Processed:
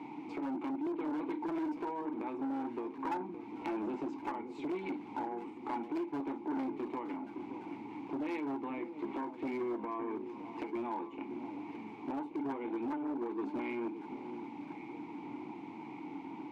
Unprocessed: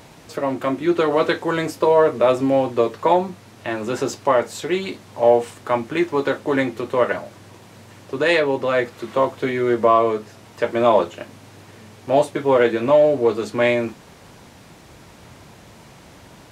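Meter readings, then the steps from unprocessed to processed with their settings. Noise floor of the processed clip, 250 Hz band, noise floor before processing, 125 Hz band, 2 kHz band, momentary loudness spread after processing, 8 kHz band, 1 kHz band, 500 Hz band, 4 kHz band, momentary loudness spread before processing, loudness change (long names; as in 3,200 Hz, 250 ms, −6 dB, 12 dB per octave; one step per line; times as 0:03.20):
−48 dBFS, −11.5 dB, −46 dBFS, −23.5 dB, −23.0 dB, 8 LU, can't be measured, −17.5 dB, −24.0 dB, −26.5 dB, 12 LU, −20.0 dB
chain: Bessel high-pass filter 160 Hz, order 6
high-shelf EQ 2,700 Hz −11.5 dB
in parallel at −2 dB: brickwall limiter −12 dBFS, peak gain reduction 8 dB
on the sum: downward compressor 6 to 1, threshold −28 dBFS, peak gain reduction 19 dB
formant filter u
hard clipping −38 dBFS, distortion −11 dB
on a send: delay that swaps between a low-pass and a high-pass 566 ms, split 900 Hz, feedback 66%, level −10.5 dB
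on the sum: saturating transformer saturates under 530 Hz
level +8 dB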